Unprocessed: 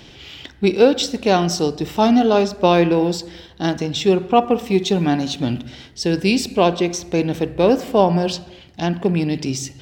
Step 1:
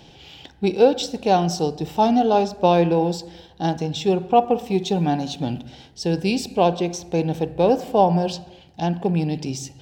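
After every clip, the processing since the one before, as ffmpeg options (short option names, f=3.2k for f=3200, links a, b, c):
-af "equalizer=f=160:t=o:w=0.33:g=6,equalizer=f=500:t=o:w=0.33:g=4,equalizer=f=800:t=o:w=0.33:g=10,equalizer=f=1.25k:t=o:w=0.33:g=-5,equalizer=f=2k:t=o:w=0.33:g=-6,volume=-5.5dB"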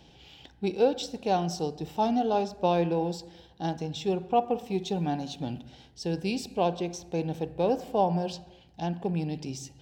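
-af "aeval=exprs='val(0)+0.002*(sin(2*PI*60*n/s)+sin(2*PI*2*60*n/s)/2+sin(2*PI*3*60*n/s)/3+sin(2*PI*4*60*n/s)/4+sin(2*PI*5*60*n/s)/5)':c=same,volume=-8.5dB"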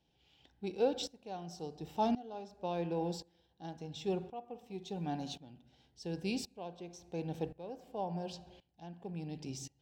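-af "aeval=exprs='val(0)*pow(10,-19*if(lt(mod(-0.93*n/s,1),2*abs(-0.93)/1000),1-mod(-0.93*n/s,1)/(2*abs(-0.93)/1000),(mod(-0.93*n/s,1)-2*abs(-0.93)/1000)/(1-2*abs(-0.93)/1000))/20)':c=same,volume=-3.5dB"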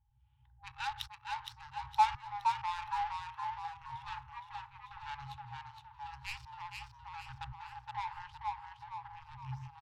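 -filter_complex "[0:a]adynamicsmooth=sensitivity=7.5:basefreq=570,asplit=6[a][b][c][d][e][f];[b]adelay=466,afreqshift=56,volume=-4.5dB[g];[c]adelay=932,afreqshift=112,volume=-12dB[h];[d]adelay=1398,afreqshift=168,volume=-19.6dB[i];[e]adelay=1864,afreqshift=224,volume=-27.1dB[j];[f]adelay=2330,afreqshift=280,volume=-34.6dB[k];[a][g][h][i][j][k]amix=inputs=6:normalize=0,afftfilt=real='re*(1-between(b*sr/4096,130,800))':imag='im*(1-between(b*sr/4096,130,800))':win_size=4096:overlap=0.75,volume=9dB"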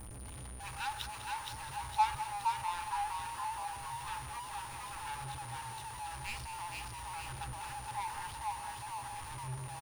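-af "aeval=exprs='val(0)+0.5*0.0119*sgn(val(0))':c=same,aeval=exprs='val(0)+0.00282*sin(2*PI*9500*n/s)':c=same,aecho=1:1:202:0.251,volume=-3dB"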